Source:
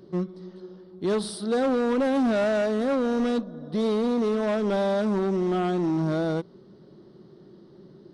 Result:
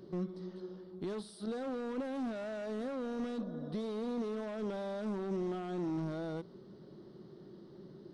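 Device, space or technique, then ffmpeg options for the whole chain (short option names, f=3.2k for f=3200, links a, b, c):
de-esser from a sidechain: -filter_complex "[0:a]asplit=2[a][b];[b]highpass=f=7k:p=1,apad=whole_len=358566[c];[a][c]sidechaincompress=threshold=-55dB:ratio=4:attack=1.4:release=28,volume=-3dB"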